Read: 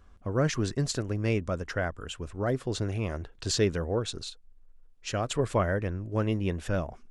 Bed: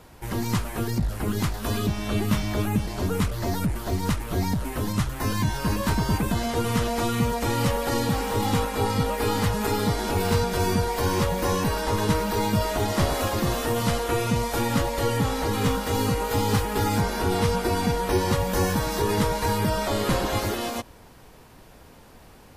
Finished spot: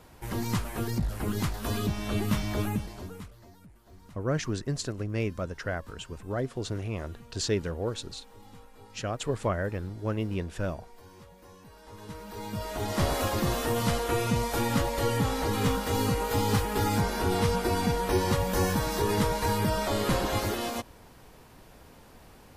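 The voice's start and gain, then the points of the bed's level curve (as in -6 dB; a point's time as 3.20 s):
3.90 s, -2.5 dB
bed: 2.67 s -4 dB
3.54 s -28 dB
11.63 s -28 dB
13.07 s -3 dB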